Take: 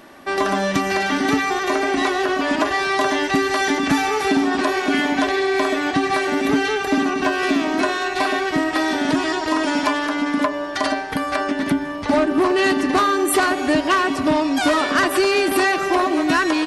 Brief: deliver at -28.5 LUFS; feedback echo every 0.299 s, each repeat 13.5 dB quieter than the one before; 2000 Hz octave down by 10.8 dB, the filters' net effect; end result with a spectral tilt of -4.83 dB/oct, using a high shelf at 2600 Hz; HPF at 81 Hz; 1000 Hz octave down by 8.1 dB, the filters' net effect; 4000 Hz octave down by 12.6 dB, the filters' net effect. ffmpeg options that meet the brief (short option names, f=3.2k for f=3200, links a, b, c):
-af "highpass=81,equalizer=f=1k:t=o:g=-8,equalizer=f=2k:t=o:g=-6.5,highshelf=f=2.6k:g=-7,equalizer=f=4k:t=o:g=-7.5,aecho=1:1:299|598:0.211|0.0444,volume=-5.5dB"